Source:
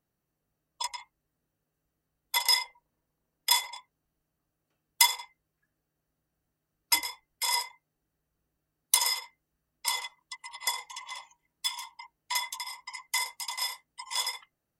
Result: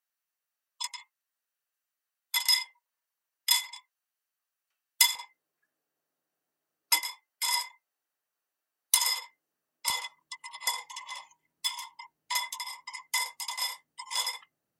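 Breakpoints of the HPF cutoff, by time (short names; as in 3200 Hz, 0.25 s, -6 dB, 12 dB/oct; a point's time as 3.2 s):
1400 Hz
from 5.15 s 400 Hz
from 6.99 s 840 Hz
from 9.07 s 370 Hz
from 9.9 s 130 Hz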